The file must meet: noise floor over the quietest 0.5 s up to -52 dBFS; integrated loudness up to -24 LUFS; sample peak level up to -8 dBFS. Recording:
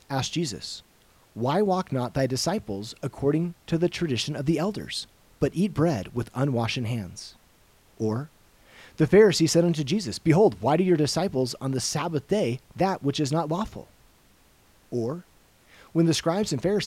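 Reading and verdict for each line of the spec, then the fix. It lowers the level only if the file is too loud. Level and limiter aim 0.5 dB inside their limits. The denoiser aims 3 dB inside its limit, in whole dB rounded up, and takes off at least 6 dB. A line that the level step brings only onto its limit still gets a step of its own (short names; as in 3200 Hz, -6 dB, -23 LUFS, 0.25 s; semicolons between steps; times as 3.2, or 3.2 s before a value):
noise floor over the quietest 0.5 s -59 dBFS: OK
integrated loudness -25.5 LUFS: OK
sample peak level -6.0 dBFS: fail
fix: limiter -8.5 dBFS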